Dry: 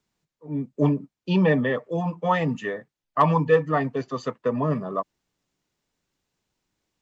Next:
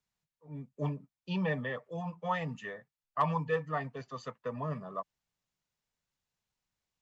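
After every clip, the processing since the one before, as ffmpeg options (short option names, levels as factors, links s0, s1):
-af "equalizer=f=320:t=o:w=1:g=-11,volume=0.355"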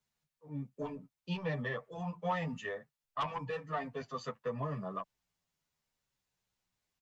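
-filter_complex "[0:a]aeval=exprs='0.158*sin(PI/2*2.24*val(0)/0.158)':c=same,acompressor=threshold=0.0708:ratio=6,asplit=2[s0][s1];[s1]adelay=9.8,afreqshift=-0.71[s2];[s0][s2]amix=inputs=2:normalize=1,volume=0.501"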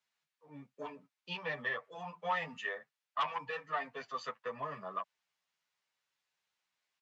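-af "bandpass=f=2100:t=q:w=0.61:csg=0,volume=1.68"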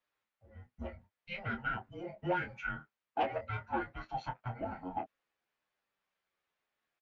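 -filter_complex "[0:a]bass=f=250:g=-9,treble=f=4000:g=-12,asplit=2[s0][s1];[s1]adelay=25,volume=0.422[s2];[s0][s2]amix=inputs=2:normalize=0,afreqshift=-370,volume=1.12"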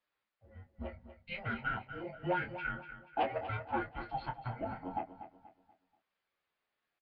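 -filter_complex "[0:a]asplit=2[s0][s1];[s1]aecho=0:1:241|482|723|964:0.251|0.0904|0.0326|0.0117[s2];[s0][s2]amix=inputs=2:normalize=0,aresample=11025,aresample=44100"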